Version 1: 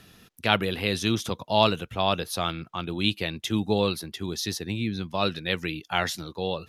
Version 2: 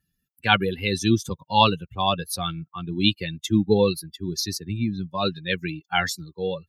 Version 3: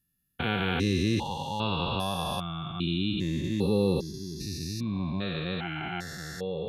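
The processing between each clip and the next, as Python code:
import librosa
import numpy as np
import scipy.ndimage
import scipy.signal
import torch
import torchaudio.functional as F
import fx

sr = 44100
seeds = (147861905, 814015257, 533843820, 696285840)

y1 = fx.bin_expand(x, sr, power=2.0)
y1 = fx.notch_comb(y1, sr, f0_hz=640.0)
y1 = y1 * librosa.db_to_amplitude(8.5)
y2 = fx.spec_steps(y1, sr, hold_ms=400)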